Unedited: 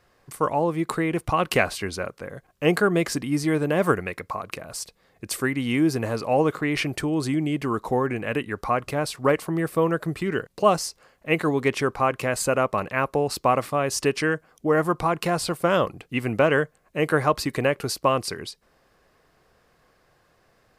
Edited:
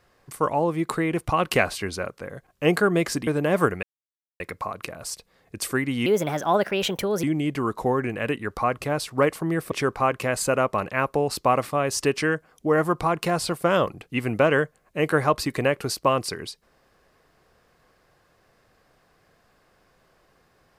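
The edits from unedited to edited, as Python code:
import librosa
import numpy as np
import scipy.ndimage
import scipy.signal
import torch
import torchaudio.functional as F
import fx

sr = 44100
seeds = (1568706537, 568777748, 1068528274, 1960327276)

y = fx.edit(x, sr, fx.cut(start_s=3.27, length_s=0.26),
    fx.insert_silence(at_s=4.09, length_s=0.57),
    fx.speed_span(start_s=5.75, length_s=1.55, speed=1.32),
    fx.cut(start_s=9.78, length_s=1.93), tone=tone)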